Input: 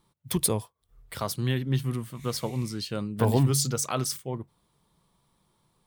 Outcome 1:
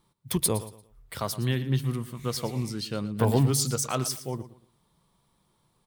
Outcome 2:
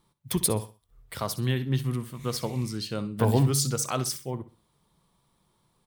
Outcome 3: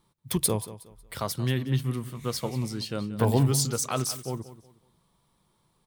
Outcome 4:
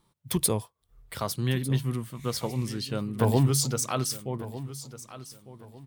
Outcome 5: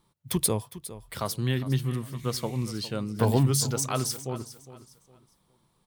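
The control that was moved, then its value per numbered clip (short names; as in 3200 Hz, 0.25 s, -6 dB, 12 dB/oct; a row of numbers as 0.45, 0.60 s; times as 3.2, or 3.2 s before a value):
feedback echo, time: 115, 64, 183, 1201, 408 ms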